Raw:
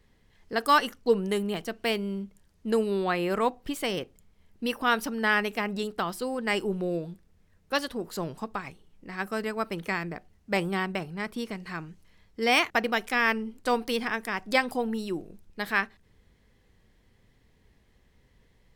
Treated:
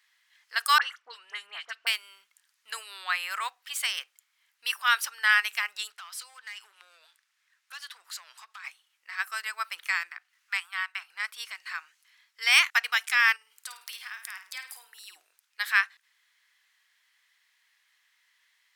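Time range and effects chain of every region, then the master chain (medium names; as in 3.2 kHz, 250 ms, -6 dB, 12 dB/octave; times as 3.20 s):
0.78–1.87 s: tape spacing loss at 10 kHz 20 dB + phase dispersion highs, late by 43 ms, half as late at 1.9 kHz + three bands compressed up and down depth 70%
5.90–8.64 s: frequency weighting A + compression, threshold -38 dBFS + hard clipper -37 dBFS
10.10–11.10 s: high-pass 910 Hz 24 dB/octave + treble shelf 3.3 kHz -9 dB + tape noise reduction on one side only encoder only
13.36–15.16 s: treble shelf 6.8 kHz +9.5 dB + compression 4:1, threshold -40 dBFS + flutter echo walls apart 9 m, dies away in 0.38 s
whole clip: high-pass 1.3 kHz 24 dB/octave; dynamic bell 8.1 kHz, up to +4 dB, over -48 dBFS, Q 1.1; trim +4.5 dB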